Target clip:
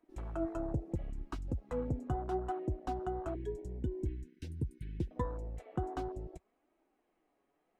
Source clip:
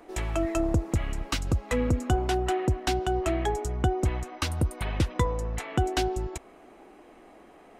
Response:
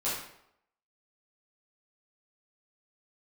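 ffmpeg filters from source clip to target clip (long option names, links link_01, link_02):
-filter_complex "[0:a]flanger=delay=3.1:depth=4.2:regen=51:speed=0.74:shape=sinusoidal,asettb=1/sr,asplit=3[link_01][link_02][link_03];[link_01]atrim=end=3.354[link_04];[link_02]atrim=start=3.35:end=5.11,asetpts=PTS-STARTPTS,afade=type=in:duration=0.004:curve=qsin,afade=type=out:start_time=1.756:duration=0.004:curve=qsin,asuperstop=centerf=830:order=12:qfactor=0.77[link_05];[link_03]atrim=start=5.106[link_06];[link_04][link_05]acrossfade=duration=0.004:curve1=hsin:curve2=qsin[link_07];[link_07][link_06]acrossfade=duration=0.004:curve1=qsin:curve2=hsin,afwtdn=0.0178,volume=-5.5dB"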